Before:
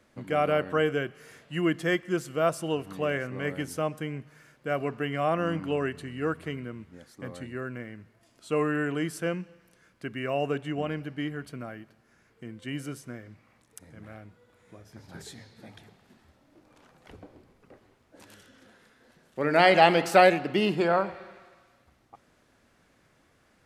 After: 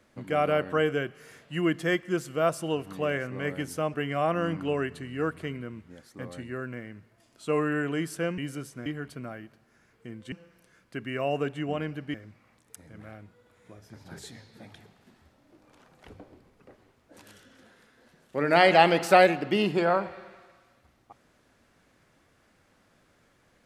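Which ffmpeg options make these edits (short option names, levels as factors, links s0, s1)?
-filter_complex "[0:a]asplit=6[s0][s1][s2][s3][s4][s5];[s0]atrim=end=3.942[s6];[s1]atrim=start=4.968:end=9.412[s7];[s2]atrim=start=12.688:end=13.172[s8];[s3]atrim=start=11.228:end=12.692[s9];[s4]atrim=start=9.408:end=11.232[s10];[s5]atrim=start=13.168[s11];[s6][s7]acrossfade=d=0.004:c1=hsin:c2=hsin[s12];[s12][s8]acrossfade=d=0.004:c1=hsin:c2=hsin[s13];[s13][s9]acrossfade=d=0.004:c1=hsin:c2=hsin[s14];[s14][s10]acrossfade=d=0.004:c1=hsin:c2=hsin[s15];[s15][s11]acrossfade=d=0.004:c1=hsin:c2=hsin"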